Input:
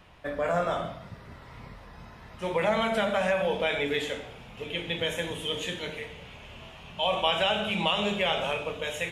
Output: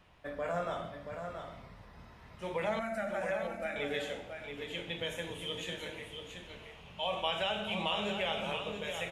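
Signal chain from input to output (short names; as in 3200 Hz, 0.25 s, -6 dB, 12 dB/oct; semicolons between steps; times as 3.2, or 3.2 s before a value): 2.79–3.76 fixed phaser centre 660 Hz, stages 8; on a send: echo 0.678 s -7 dB; on the sum: gain -8 dB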